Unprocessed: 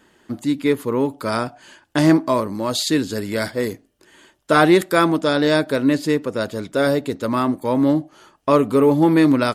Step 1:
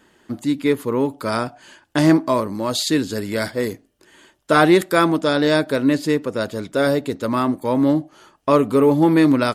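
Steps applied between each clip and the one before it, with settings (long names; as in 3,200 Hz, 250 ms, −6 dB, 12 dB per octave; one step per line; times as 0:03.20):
no processing that can be heard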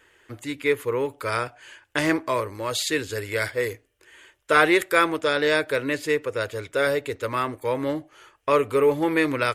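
drawn EQ curve 110 Hz 0 dB, 200 Hz −19 dB, 470 Hz +2 dB, 680 Hz −6 dB, 2,300 Hz +7 dB, 4,500 Hz −4 dB, 6,900 Hz 0 dB
level −2.5 dB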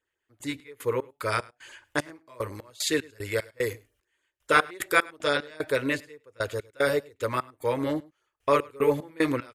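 gate pattern "..x.x.x.xx" 75 BPM −24 dB
auto-filter notch sine 7.2 Hz 350–3,000 Hz
single-tap delay 103 ms −24 dB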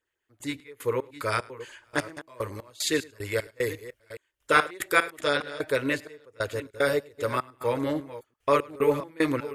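delay that plays each chunk backwards 417 ms, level −14 dB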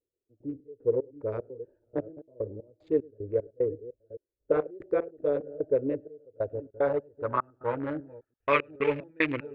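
adaptive Wiener filter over 41 samples
dynamic equaliser 2,800 Hz, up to +7 dB, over −44 dBFS, Q 1.1
low-pass filter sweep 490 Hz → 2,400 Hz, 0:05.99–0:08.64
level −4 dB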